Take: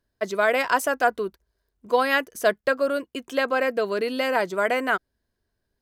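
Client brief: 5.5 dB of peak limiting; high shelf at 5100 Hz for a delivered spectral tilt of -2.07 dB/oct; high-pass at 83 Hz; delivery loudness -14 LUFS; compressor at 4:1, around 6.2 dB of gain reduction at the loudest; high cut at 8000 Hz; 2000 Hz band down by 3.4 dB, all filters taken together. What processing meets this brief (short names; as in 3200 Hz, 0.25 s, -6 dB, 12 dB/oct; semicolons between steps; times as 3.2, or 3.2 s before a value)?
HPF 83 Hz; LPF 8000 Hz; bell 2000 Hz -4 dB; high shelf 5100 Hz -4.5 dB; compressor 4:1, threshold -23 dBFS; gain +16 dB; limiter -3.5 dBFS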